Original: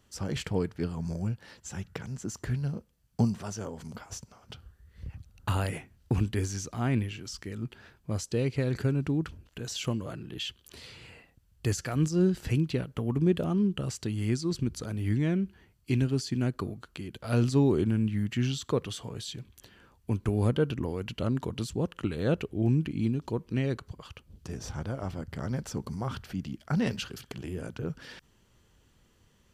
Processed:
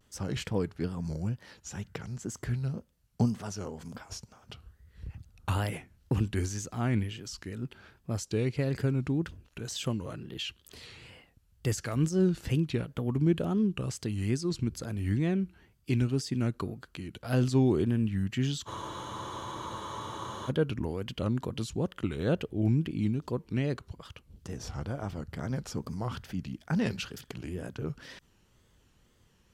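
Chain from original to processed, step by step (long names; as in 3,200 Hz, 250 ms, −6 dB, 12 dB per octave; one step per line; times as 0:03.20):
tape wow and flutter 120 cents
frozen spectrum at 0:18.69, 1.80 s
level −1 dB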